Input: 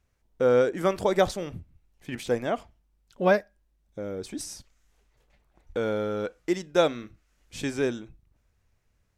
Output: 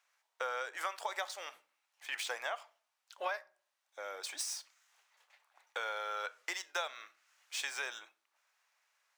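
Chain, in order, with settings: median filter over 3 samples; HPF 830 Hz 24 dB/oct; compressor 10:1, threshold -39 dBFS, peak gain reduction 16.5 dB; reverb RT60 0.45 s, pre-delay 4 ms, DRR 16 dB; gain +4.5 dB

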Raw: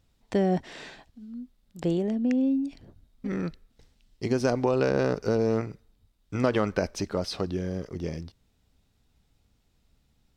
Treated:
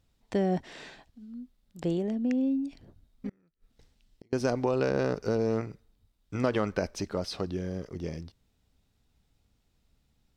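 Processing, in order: 3.29–4.33 flipped gate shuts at -31 dBFS, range -35 dB; gain -3 dB

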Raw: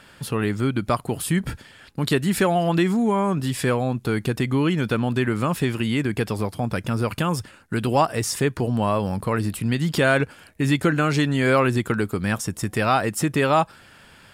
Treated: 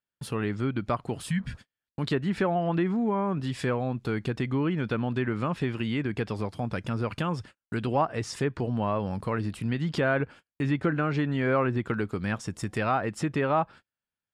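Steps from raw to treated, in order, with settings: spectral repair 1.32–1.71, 270–1400 Hz both; treble ducked by the level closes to 1900 Hz, closed at -15.5 dBFS; gate -38 dBFS, range -40 dB; gain -6 dB

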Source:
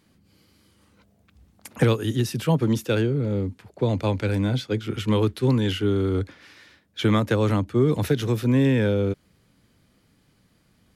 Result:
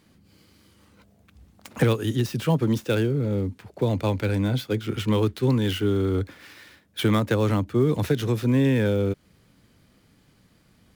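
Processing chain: switching dead time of 0.056 ms; in parallel at -1 dB: compressor, threshold -31 dBFS, peak gain reduction 16 dB; on the sum: gain -2.5 dB

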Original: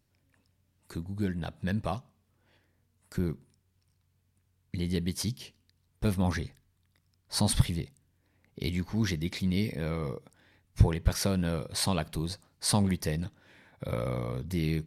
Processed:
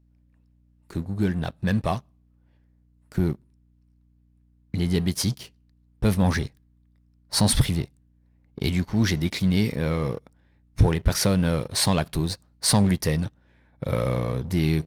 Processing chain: sample leveller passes 2; hum 60 Hz, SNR 35 dB; mismatched tape noise reduction decoder only

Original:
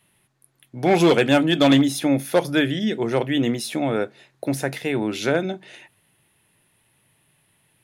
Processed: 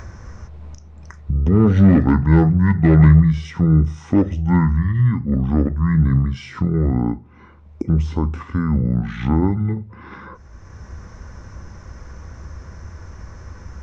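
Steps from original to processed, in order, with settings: upward compressor, threshold -20 dBFS; RIAA curve playback; wide varispeed 0.567×; gain -1 dB

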